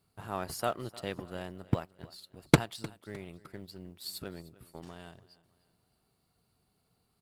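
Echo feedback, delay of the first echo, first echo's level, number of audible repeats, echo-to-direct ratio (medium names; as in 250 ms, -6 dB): 40%, 305 ms, -20.0 dB, 2, -19.5 dB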